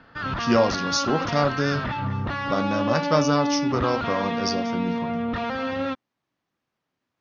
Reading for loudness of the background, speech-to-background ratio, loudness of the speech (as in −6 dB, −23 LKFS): −27.5 LKFS, 2.5 dB, −25.0 LKFS